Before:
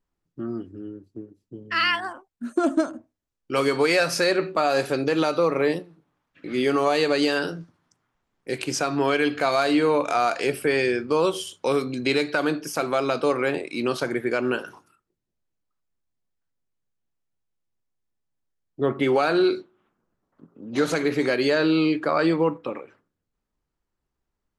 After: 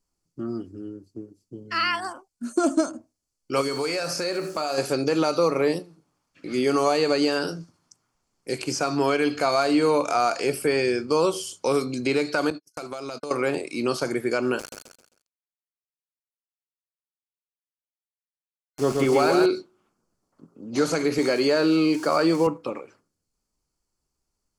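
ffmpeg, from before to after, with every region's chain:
-filter_complex "[0:a]asettb=1/sr,asplit=3[a][b][c];[a]atrim=end=3.614[d];[b]atrim=start=3.61:end=4.78,asetpts=PTS-STARTPTS,afade=t=in:d=0.004:c=qsin,afade=t=out:st=1.166:d=0.004:c=qsin,bandreject=f=48.2:t=h:w=4,bandreject=f=96.4:t=h:w=4,bandreject=f=144.6:t=h:w=4,bandreject=f=192.8:t=h:w=4,bandreject=f=241:t=h:w=4,bandreject=f=289.2:t=h:w=4,bandreject=f=337.4:t=h:w=4,bandreject=f=385.6:t=h:w=4,bandreject=f=433.8:t=h:w=4,bandreject=f=482:t=h:w=4,bandreject=f=530.2:t=h:w=4,bandreject=f=578.4:t=h:w=4,bandreject=f=626.6:t=h:w=4,bandreject=f=674.8:t=h:w=4,bandreject=f=723:t=h:w=4,bandreject=f=771.2:t=h:w=4,bandreject=f=819.4:t=h:w=4,bandreject=f=867.6:t=h:w=4,bandreject=f=915.8:t=h:w=4,bandreject=f=964:t=h:w=4,bandreject=f=1.0122k:t=h:w=4,bandreject=f=1.0604k:t=h:w=4,bandreject=f=1.1086k:t=h:w=4,bandreject=f=1.1568k:t=h:w=4,bandreject=f=1.205k:t=h:w=4,bandreject=f=1.2532k:t=h:w=4,bandreject=f=1.3014k:t=h:w=4,bandreject=f=1.3496k:t=h:w=4,bandreject=f=1.3978k:t=h:w=4,bandreject=f=1.446k:t=h:w=4,bandreject=f=1.4942k:t=h:w=4,bandreject=f=1.5424k:t=h:w=4,bandreject=f=1.5906k:t=h:w=4,bandreject=f=1.6388k:t=h:w=4,bandreject=f=1.687k:t=h:w=4,bandreject=f=1.7352k:t=h:w=4,bandreject=f=1.7834k:t=h:w=4,bandreject=f=1.8316k:t=h:w=4,bandreject=f=1.8798k:t=h:w=4,bandreject=f=1.928k:t=h:w=4,acrusher=bits=9:dc=4:mix=0:aa=0.000001,acompressor=threshold=-25dB:ratio=2.5:attack=3.2:release=140:knee=1:detection=peak[e];[c]atrim=start=4.776[f];[d][e]acrossfade=d=0.004:c1=hsin:c2=qsin[g];[g][f]acrossfade=d=0.004:c1=qsin:c2=hsin,asettb=1/sr,asplit=3[h][i][j];[h]atrim=end=12.504[k];[i]atrim=start=12.5:end=13.31,asetpts=PTS-STARTPTS,afade=t=in:d=0.004:c=qsin,afade=t=out:st=0.806:d=0.004:c=qsin,agate=range=-55dB:threshold=-29dB:ratio=16:release=100:detection=peak,acompressor=threshold=-29dB:ratio=16:attack=3.2:release=140:knee=1:detection=peak[l];[j]atrim=start=13.306[m];[k][l]acrossfade=d=0.004:c1=hsin:c2=qsin[n];[n][m]acrossfade=d=0.004:c1=qsin:c2=hsin,asettb=1/sr,asplit=3[o][p][q];[o]atrim=end=14.594[r];[p]atrim=start=14.59:end=19.46,asetpts=PTS-STARTPTS,afade=t=in:d=0.004:c=qsin,afade=t=out:st=4.866:d=0.004:c=qsin,acompressor=mode=upward:threshold=-33dB:ratio=2.5:attack=3.2:release=140:knee=2.83:detection=peak,aeval=exprs='val(0)*gte(abs(val(0)),0.0224)':c=same,aecho=1:1:132|264|396|528:0.668|0.221|0.0728|0.024,atrim=end_sample=214767[s];[q]atrim=start=19.456[t];[r][s]acrossfade=d=0.004:c1=hsin:c2=qsin[u];[u][t]acrossfade=d=0.004:c1=qsin:c2=hsin,asettb=1/sr,asplit=3[v][w][x];[v]atrim=end=21.184[y];[w]atrim=start=21.18:end=22.47,asetpts=PTS-STARTPTS,afade=t=in:d=0.004:c=qsin,afade=t=out:st=1.286:d=0.004:c=qsin,aeval=exprs='val(0)+0.5*0.0168*sgn(val(0))':c=same,highpass=140[z];[x]atrim=start=22.466[aa];[y][z]acrossfade=d=0.004:c1=hsin:c2=qsin[ab];[ab][aa]acrossfade=d=0.004:c1=qsin:c2=hsin,acrossover=split=2700[ac][ad];[ad]acompressor=threshold=-41dB:ratio=4:attack=1:release=60[ae];[ac][ae]amix=inputs=2:normalize=0,superequalizer=11b=0.631:14b=3.55:15b=3.98:16b=3.16"

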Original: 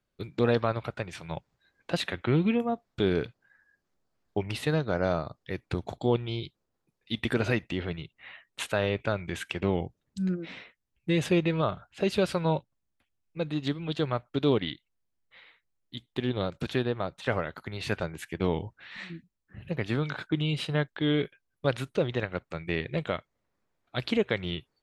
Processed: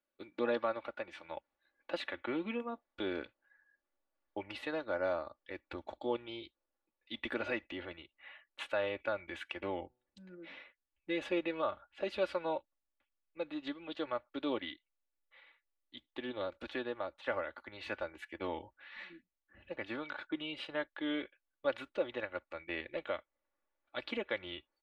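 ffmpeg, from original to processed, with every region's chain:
-filter_complex "[0:a]asettb=1/sr,asplit=3[a][b][c];[a]atrim=end=9.864[d];[b]atrim=start=9.86:end=10.58,asetpts=PTS-STARTPTS,afade=t=in:d=0.004:c=qsin,afade=t=out:st=0.716:d=0.004:c=qsin,equalizer=f=170:w=6.2:g=7.5,acompressor=threshold=-34dB:ratio=2.5:attack=3.2:release=140:knee=1:detection=peak,bandreject=f=124.3:t=h:w=4,bandreject=f=248.6:t=h:w=4,bandreject=f=372.9:t=h:w=4,bandreject=f=497.2:t=h:w=4,bandreject=f=621.5:t=h:w=4,bandreject=f=745.8:t=h:w=4,bandreject=f=870.1:t=h:w=4,bandreject=f=994.4:t=h:w=4,bandreject=f=1.1187k:t=h:w=4,bandreject=f=1.243k:t=h:w=4,bandreject=f=1.3673k:t=h:w=4,bandreject=f=1.4916k:t=h:w=4,bandreject=f=1.6159k:t=h:w=4,bandreject=f=1.7402k:t=h:w=4,bandreject=f=1.8645k:t=h:w=4,bandreject=f=1.9888k:t=h:w=4[e];[c]atrim=start=10.576[f];[d][e]acrossfade=d=0.004:c1=hsin:c2=qsin[g];[g][f]acrossfade=d=0.004:c1=qsin:c2=hsin,acrossover=split=270 3700:gain=0.1 1 0.141[h][i][j];[h][i][j]amix=inputs=3:normalize=0,aecho=1:1:3.5:0.67,asubboost=boost=5:cutoff=79,volume=-7dB"

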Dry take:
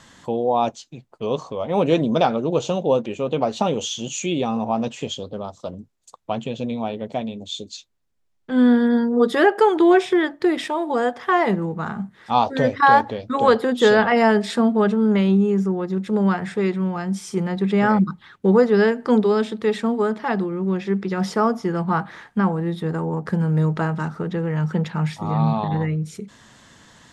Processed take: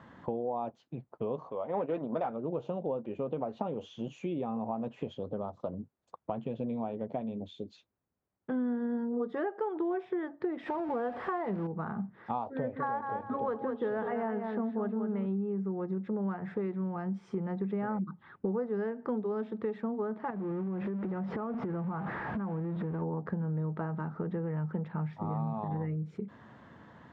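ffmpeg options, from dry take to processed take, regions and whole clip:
-filter_complex "[0:a]asettb=1/sr,asplit=3[a][b][c];[a]atrim=end=1.494[d];[b]atrim=start=1.49:end=2.3,asetpts=PTS-STARTPTS,afade=t=in:d=0.004:c=qsin,afade=t=out:st=0.806:d=0.004:c=qsin,agate=range=-10dB:threshold=-21dB:ratio=16:release=100:detection=peak,asplit=2[e][f];[f]highpass=f=720:p=1,volume=15dB,asoftclip=type=tanh:threshold=-4dB[g];[e][g]amix=inputs=2:normalize=0,lowpass=f=3.3k:p=1,volume=-6dB[h];[c]atrim=start=2.296[i];[d][h]acrossfade=d=0.004:c1=hsin:c2=qsin[j];[j][i]acrossfade=d=0.004:c1=qsin:c2=hsin,asettb=1/sr,asplit=3[k][l][m];[k]atrim=end=10.664[n];[l]atrim=start=10.66:end=11.67,asetpts=PTS-STARTPTS,afade=t=in:d=0.004:c=qsin,afade=t=out:st=1.006:d=0.004:c=qsin,aeval=exprs='val(0)+0.5*0.0668*sgn(val(0))':c=same,bandreject=f=6.4k:w=7.4[o];[m]atrim=start=11.666[p];[n][o]acrossfade=d=0.004:c1=hsin:c2=qsin[q];[q][p]acrossfade=d=0.004:c1=qsin:c2=hsin,asettb=1/sr,asplit=3[r][s][t];[r]atrim=end=12.564[u];[s]atrim=start=12.56:end=15.26,asetpts=PTS-STARTPTS,afade=t=in:d=0.004:c=qsin,afade=t=out:st=2.696:d=0.004:c=qsin,lowpass=3.5k,aecho=1:1:199|398|597:0.422|0.0801|0.0152,atrim=end_sample=119070[v];[t]atrim=start=15.256[w];[u][v]acrossfade=d=0.004:c1=hsin:c2=qsin[x];[x][w]acrossfade=d=0.004:c1=qsin:c2=hsin,asettb=1/sr,asplit=3[y][z][aa];[y]atrim=end=20.304[ab];[z]atrim=start=20.3:end=23.02,asetpts=PTS-STARTPTS,afade=t=in:d=0.004:c=qsin,afade=t=out:st=2.716:d=0.004:c=qsin,aeval=exprs='val(0)+0.5*0.0562*sgn(val(0))':c=same,bass=f=250:g=3,treble=f=4k:g=-13,acompressor=threshold=-27dB:ratio=6:attack=3.2:release=140:knee=1:detection=peak[ac];[aa]atrim=start=23.016[ad];[ab][ac]acrossfade=d=0.004:c1=hsin:c2=qsin[ae];[ae][ad]acrossfade=d=0.004:c1=qsin:c2=hsin,highpass=79,acompressor=threshold=-31dB:ratio=5,lowpass=1.3k,volume=-1dB"

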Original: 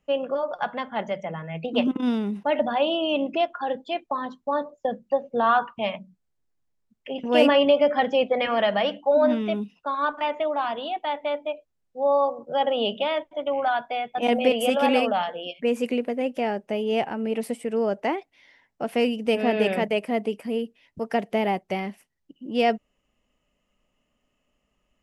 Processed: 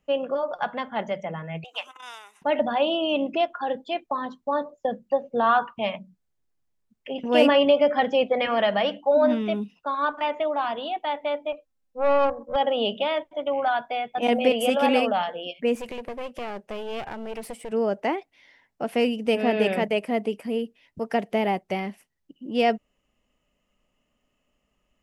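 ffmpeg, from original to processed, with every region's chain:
-filter_complex "[0:a]asettb=1/sr,asplit=3[a][b][c];[a]atrim=end=1.644[d];[b]atrim=start=1.64:end=2.42,asetpts=PTS-STARTPTS,afade=t=in:d=0.004:c=qsin,afade=t=out:st=0.776:d=0.004:c=qsin,highpass=f=910:w=0.5412,highpass=f=910:w=1.3066,highshelf=f=5.5k:t=q:w=3:g=6[e];[c]atrim=start=2.416[f];[d][e]acrossfade=d=0.004:c1=hsin:c2=qsin[g];[g][f]acrossfade=d=0.004:c1=qsin:c2=hsin,asettb=1/sr,asplit=3[h][i][j];[h]atrim=end=11.524[k];[i]atrim=start=11.52:end=12.56,asetpts=PTS-STARTPTS,afade=t=in:d=0.004:c=qsin,afade=t=out:st=1.036:d=0.004:c=qsin,aecho=1:1:3.8:0.96,atrim=end_sample=45864,aeval=exprs='(tanh(6.31*val(0)+0.7)-tanh(0.7))/6.31':c=same[l];[j]atrim=start=12.556[m];[k][l]acrossfade=d=0.004:c1=hsin:c2=qsin[n];[n][m]acrossfade=d=0.004:c1=qsin:c2=hsin,asettb=1/sr,asplit=3[o][p][q];[o]atrim=end=15.754[r];[p]atrim=start=15.75:end=17.72,asetpts=PTS-STARTPTS,afade=t=in:d=0.004:c=qsin,afade=t=out:st=1.966:d=0.004:c=qsin,equalizer=f=270:t=o:w=0.36:g=-10.5,acompressor=threshold=-28dB:ratio=2.5:attack=3.2:release=140:knee=1:detection=peak,aeval=exprs='clip(val(0),-1,0.01)':c=same[s];[q]atrim=start=17.716[t];[r][s]acrossfade=d=0.004:c1=hsin:c2=qsin[u];[u][t]acrossfade=d=0.004:c1=qsin:c2=hsin"

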